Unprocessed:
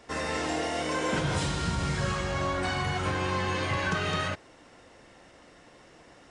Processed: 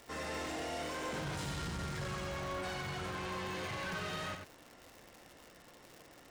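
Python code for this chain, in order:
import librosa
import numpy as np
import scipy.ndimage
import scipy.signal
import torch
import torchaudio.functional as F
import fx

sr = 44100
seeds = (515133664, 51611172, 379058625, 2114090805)

y = 10.0 ** (-32.0 / 20.0) * np.tanh(x / 10.0 ** (-32.0 / 20.0))
y = y + 10.0 ** (-6.5 / 20.0) * np.pad(y, (int(92 * sr / 1000.0), 0))[:len(y)]
y = fx.dmg_crackle(y, sr, seeds[0], per_s=230.0, level_db=-38.0)
y = y * 10.0 ** (-5.5 / 20.0)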